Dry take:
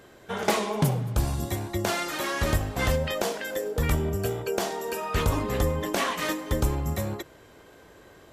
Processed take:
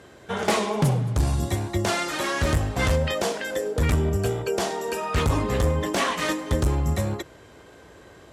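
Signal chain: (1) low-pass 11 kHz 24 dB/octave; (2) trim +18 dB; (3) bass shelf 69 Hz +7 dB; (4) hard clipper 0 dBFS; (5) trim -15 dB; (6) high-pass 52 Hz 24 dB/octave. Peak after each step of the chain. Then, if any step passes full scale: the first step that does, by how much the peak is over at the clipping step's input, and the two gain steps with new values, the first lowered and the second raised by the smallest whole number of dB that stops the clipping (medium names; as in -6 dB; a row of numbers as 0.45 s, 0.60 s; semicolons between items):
-10.0 dBFS, +8.0 dBFS, +8.5 dBFS, 0.0 dBFS, -15.0 dBFS, -9.0 dBFS; step 2, 8.5 dB; step 2 +9 dB, step 5 -6 dB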